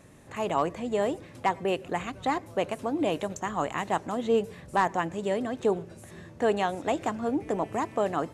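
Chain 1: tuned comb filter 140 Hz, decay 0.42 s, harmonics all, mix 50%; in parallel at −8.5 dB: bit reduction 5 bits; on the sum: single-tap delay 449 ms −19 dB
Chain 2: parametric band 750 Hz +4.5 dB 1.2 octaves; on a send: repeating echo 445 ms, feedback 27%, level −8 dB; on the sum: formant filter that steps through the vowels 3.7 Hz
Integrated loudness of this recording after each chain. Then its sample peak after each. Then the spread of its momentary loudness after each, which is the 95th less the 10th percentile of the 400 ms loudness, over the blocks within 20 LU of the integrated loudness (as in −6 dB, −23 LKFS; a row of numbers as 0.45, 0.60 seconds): −31.5, −36.5 LKFS; −14.0, −18.0 dBFS; 6, 11 LU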